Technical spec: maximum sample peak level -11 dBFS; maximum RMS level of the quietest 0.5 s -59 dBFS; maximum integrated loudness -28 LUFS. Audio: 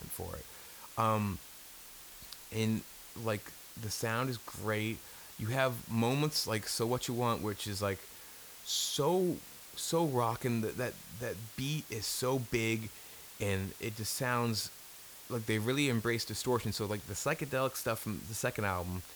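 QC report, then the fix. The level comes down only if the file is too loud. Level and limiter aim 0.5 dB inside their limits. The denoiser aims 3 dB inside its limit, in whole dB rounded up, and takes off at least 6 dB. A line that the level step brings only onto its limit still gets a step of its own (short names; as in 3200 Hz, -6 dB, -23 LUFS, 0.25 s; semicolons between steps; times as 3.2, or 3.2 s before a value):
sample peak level -16.5 dBFS: OK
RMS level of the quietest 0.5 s -52 dBFS: fail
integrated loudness -34.5 LUFS: OK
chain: denoiser 10 dB, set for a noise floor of -52 dBFS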